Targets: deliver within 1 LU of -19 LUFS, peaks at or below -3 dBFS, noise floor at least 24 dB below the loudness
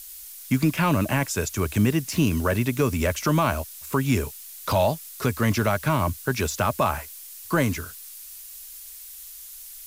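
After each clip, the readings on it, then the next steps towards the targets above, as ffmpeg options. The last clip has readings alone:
noise floor -42 dBFS; noise floor target -49 dBFS; loudness -24.5 LUFS; peak -10.5 dBFS; loudness target -19.0 LUFS
-> -af "afftdn=nr=7:nf=-42"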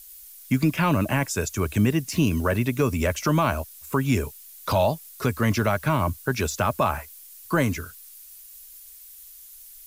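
noise floor -46 dBFS; noise floor target -49 dBFS
-> -af "afftdn=nr=6:nf=-46"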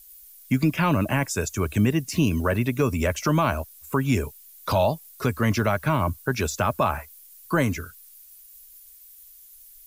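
noise floor -49 dBFS; loudness -24.5 LUFS; peak -11.0 dBFS; loudness target -19.0 LUFS
-> -af "volume=5.5dB"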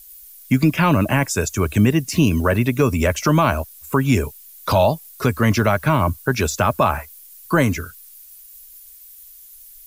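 loudness -19.0 LUFS; peak -5.5 dBFS; noise floor -44 dBFS

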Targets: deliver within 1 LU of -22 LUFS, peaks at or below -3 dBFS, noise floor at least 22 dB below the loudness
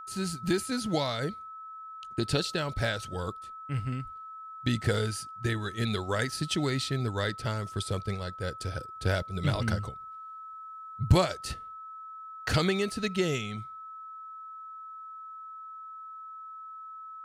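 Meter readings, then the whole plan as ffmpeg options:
steady tone 1300 Hz; tone level -41 dBFS; loudness -31.0 LUFS; peak -10.5 dBFS; loudness target -22.0 LUFS
-> -af "bandreject=f=1.3k:w=30"
-af "volume=9dB,alimiter=limit=-3dB:level=0:latency=1"

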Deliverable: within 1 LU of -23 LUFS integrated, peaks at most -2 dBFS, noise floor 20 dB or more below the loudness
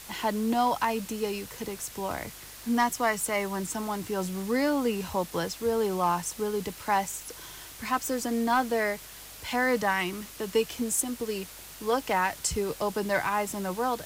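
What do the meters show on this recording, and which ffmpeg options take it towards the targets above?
hum 50 Hz; harmonics up to 150 Hz; hum level -56 dBFS; noise floor -46 dBFS; noise floor target -49 dBFS; loudness -29.0 LUFS; peak -14.5 dBFS; loudness target -23.0 LUFS
-> -af "bandreject=f=50:t=h:w=4,bandreject=f=100:t=h:w=4,bandreject=f=150:t=h:w=4"
-af "afftdn=nr=6:nf=-46"
-af "volume=6dB"

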